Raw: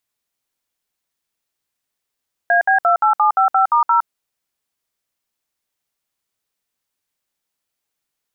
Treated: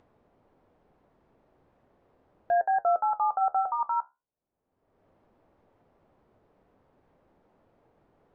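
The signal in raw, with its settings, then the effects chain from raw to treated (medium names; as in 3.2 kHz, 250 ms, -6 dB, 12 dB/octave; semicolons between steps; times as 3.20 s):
DTMF "AB28755*0", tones 112 ms, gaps 62 ms, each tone -13.5 dBFS
Chebyshev low-pass 600 Hz, order 2; upward compressor, threshold -36 dBFS; flange 0.38 Hz, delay 8.4 ms, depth 6.9 ms, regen -66%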